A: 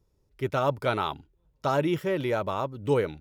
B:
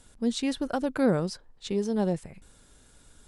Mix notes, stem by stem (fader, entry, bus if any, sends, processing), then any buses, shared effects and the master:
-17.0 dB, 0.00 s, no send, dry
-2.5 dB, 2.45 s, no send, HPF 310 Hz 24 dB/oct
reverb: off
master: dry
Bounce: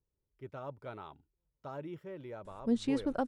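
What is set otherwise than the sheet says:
stem B: missing HPF 310 Hz 24 dB/oct; master: extra high shelf 2500 Hz -12 dB

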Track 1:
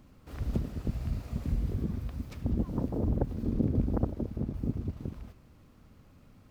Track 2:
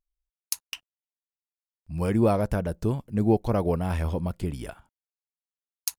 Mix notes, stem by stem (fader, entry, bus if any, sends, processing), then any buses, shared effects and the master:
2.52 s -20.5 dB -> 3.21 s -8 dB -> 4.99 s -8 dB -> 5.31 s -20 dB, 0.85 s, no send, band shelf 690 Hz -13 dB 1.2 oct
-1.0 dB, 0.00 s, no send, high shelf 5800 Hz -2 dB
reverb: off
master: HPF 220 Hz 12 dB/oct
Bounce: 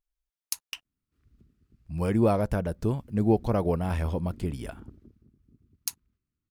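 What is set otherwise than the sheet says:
stem 1 -20.5 dB -> -29.5 dB; master: missing HPF 220 Hz 12 dB/oct

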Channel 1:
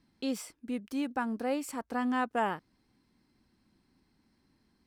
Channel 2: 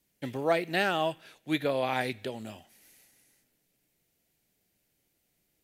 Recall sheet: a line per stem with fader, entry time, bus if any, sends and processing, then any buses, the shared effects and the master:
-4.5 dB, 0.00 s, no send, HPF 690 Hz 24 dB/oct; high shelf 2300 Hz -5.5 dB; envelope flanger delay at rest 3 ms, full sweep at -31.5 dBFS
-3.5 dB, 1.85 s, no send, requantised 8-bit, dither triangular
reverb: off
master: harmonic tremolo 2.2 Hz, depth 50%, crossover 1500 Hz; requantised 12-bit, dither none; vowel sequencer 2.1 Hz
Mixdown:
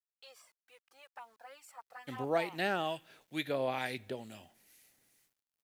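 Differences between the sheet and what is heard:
stem 2: missing requantised 8-bit, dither triangular; master: missing vowel sequencer 2.1 Hz

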